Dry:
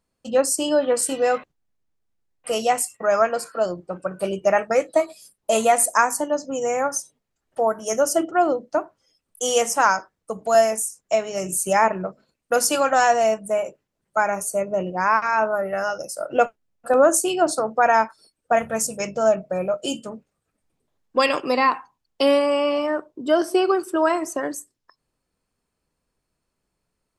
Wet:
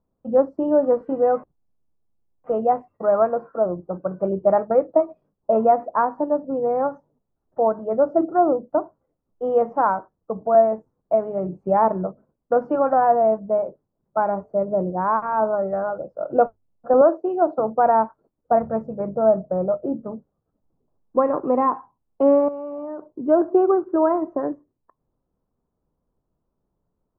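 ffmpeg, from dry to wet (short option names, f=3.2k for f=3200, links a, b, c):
-filter_complex "[0:a]asettb=1/sr,asplit=3[a][b][c];[a]atrim=end=17.014[d];[b]atrim=start=17.01:end=17.58,asetpts=PTS-STARTPTS,afade=t=in:d=0.004:c=qsin,afade=t=out:st=0.566:d=0.004:c=qsin,highpass=350,lowpass=5k[e];[c]atrim=start=17.576[f];[d][e]acrossfade=d=0.004:c1=hsin:c2=qsin[g];[g][f]acrossfade=d=0.004:c1=qsin:c2=hsin,asettb=1/sr,asplit=3[h][i][j];[h]atrim=end=18.954[k];[i]atrim=start=18.95:end=21.45,asetpts=PTS-STARTPTS,afade=t=in:d=0.004:c=qsin,afade=t=out:st=2.496:d=0.004:c=qsin,lowpass=f=2k:w=0.5412,lowpass=f=2k:w=1.3066[l];[j]atrim=start=21.446[m];[k][l]acrossfade=d=0.004:c1=hsin:c2=qsin[n];[n][m]acrossfade=d=0.004:c1=qsin:c2=hsin,asettb=1/sr,asplit=3[o][p][q];[o]atrim=end=22.484[r];[p]atrim=start=22.48:end=23.2,asetpts=PTS-STARTPTS,afade=t=in:d=0.004:c=qsin,afade=t=out:st=0.716:d=0.004:c=qsin,acompressor=threshold=-28dB:ratio=16:attack=3.2:release=140:knee=1:detection=peak[s];[q]atrim=start=23.196[t];[r][s]acrossfade=d=0.004:c1=hsin:c2=qsin[u];[u][t]acrossfade=d=0.004:c1=qsin:c2=hsin,lowpass=f=1.1k:w=0.5412,lowpass=f=1.1k:w=1.3066,lowshelf=f=430:g=4.5,bandreject=f=50:t=h:w=6,bandreject=f=100:t=h:w=6"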